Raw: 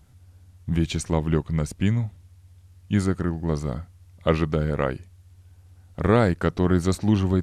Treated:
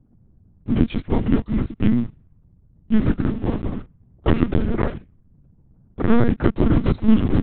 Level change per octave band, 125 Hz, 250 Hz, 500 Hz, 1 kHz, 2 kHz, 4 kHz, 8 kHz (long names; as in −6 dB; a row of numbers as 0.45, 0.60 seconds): +0.5 dB, +5.5 dB, −1.0 dB, −1.0 dB, −1.0 dB, −2.5 dB, below −40 dB